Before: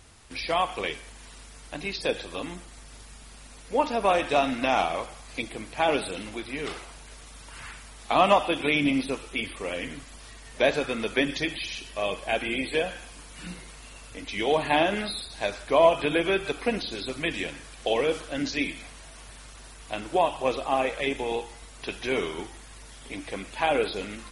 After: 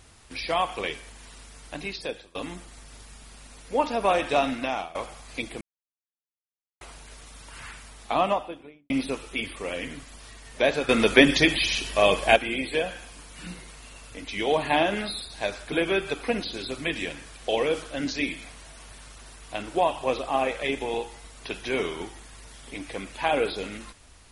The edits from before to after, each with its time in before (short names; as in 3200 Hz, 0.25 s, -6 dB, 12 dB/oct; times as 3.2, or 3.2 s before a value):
1.79–2.35 fade out, to -23 dB
4.48–4.95 fade out, to -19 dB
5.61–6.81 mute
7.87–8.9 studio fade out
10.89–12.36 gain +9 dB
15.72–16.1 cut